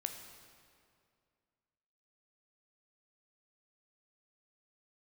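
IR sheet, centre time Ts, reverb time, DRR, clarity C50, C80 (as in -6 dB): 38 ms, 2.3 s, 5.0 dB, 6.5 dB, 7.5 dB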